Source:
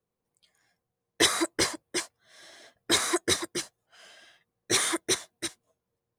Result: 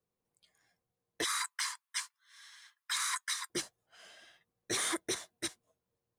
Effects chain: 1.24–3.50 s: steep high-pass 940 Hz 72 dB/octave; peak limiter -20 dBFS, peak gain reduction 11.5 dB; trim -3.5 dB

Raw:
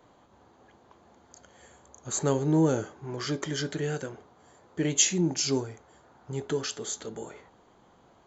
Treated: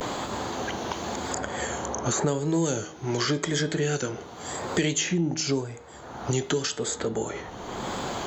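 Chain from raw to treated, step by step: vibrato 0.91 Hz 80 cents; de-hum 158.8 Hz, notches 25; three bands compressed up and down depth 100%; trim +4.5 dB

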